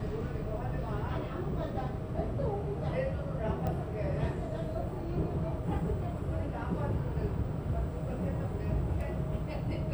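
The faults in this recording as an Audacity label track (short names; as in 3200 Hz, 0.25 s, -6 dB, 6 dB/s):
3.670000	3.670000	pop -24 dBFS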